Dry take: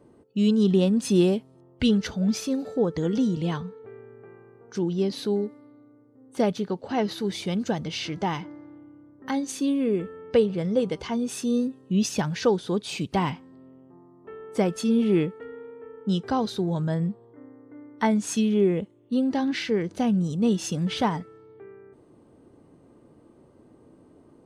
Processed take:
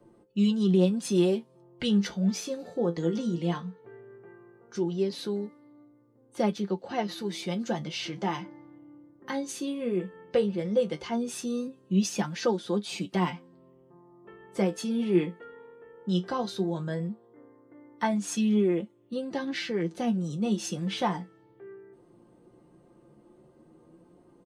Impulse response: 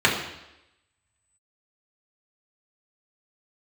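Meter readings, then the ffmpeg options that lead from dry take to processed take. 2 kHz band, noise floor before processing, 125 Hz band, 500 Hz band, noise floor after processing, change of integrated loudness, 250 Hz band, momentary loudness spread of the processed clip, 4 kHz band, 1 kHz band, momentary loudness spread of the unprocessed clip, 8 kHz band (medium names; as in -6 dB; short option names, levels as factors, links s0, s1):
-2.5 dB, -56 dBFS, -3.5 dB, -3.5 dB, -60 dBFS, -4.0 dB, -4.0 dB, 13 LU, -3.0 dB, -3.5 dB, 13 LU, -2.5 dB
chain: -filter_complex "[0:a]aecho=1:1:5.7:0.57,acrossover=split=160|910|1500[s0][s1][s2][s3];[s0]acompressor=threshold=0.00447:ratio=6[s4];[s4][s1][s2][s3]amix=inputs=4:normalize=0,flanger=delay=8.8:depth=9.5:regen=49:speed=0.16:shape=triangular"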